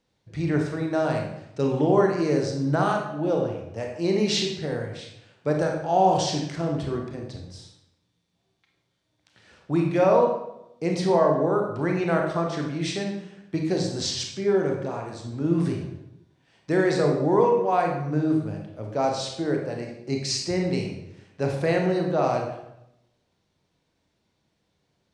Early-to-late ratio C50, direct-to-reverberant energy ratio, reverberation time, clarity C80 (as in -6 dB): 4.0 dB, 1.0 dB, 0.85 s, 7.0 dB